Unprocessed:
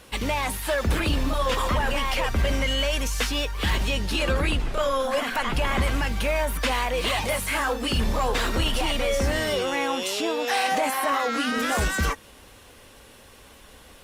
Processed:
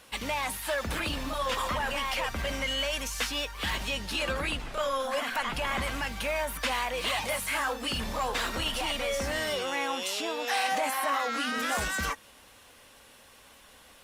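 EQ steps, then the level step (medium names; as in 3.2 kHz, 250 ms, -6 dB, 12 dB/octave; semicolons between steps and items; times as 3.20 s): bass shelf 180 Hz -10.5 dB; peaking EQ 390 Hz -5.5 dB 0.71 oct; -3.5 dB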